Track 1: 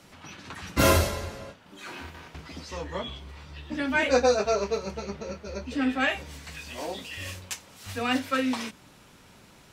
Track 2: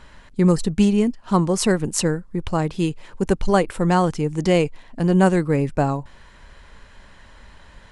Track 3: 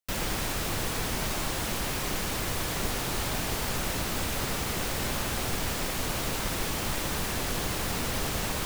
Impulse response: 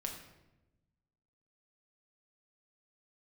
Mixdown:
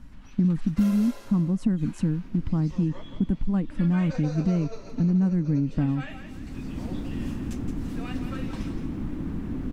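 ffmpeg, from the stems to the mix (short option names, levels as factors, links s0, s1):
-filter_complex "[0:a]alimiter=limit=0.119:level=0:latency=1:release=97,highpass=240,volume=0.237,asplit=2[s0][s1];[s1]volume=0.398[s2];[1:a]equalizer=f=380:w=1.5:g=-9.5,volume=1.26,asplit=2[s3][s4];[2:a]highshelf=f=5700:g=-12,adelay=2150,volume=1.12[s5];[s4]apad=whole_len=476396[s6];[s5][s6]sidechaincompress=threshold=0.0224:ratio=8:attack=16:release=821[s7];[s3][s7]amix=inputs=2:normalize=0,firequalizer=gain_entry='entry(110,0);entry(280,9);entry(400,-8);entry(610,-16);entry(1100,-15);entry(4500,-27)':delay=0.05:min_phase=1,acompressor=threshold=0.0891:ratio=4,volume=1[s8];[s2]aecho=0:1:170|340|510|680|850:1|0.34|0.116|0.0393|0.0134[s9];[s0][s8][s9]amix=inputs=3:normalize=0"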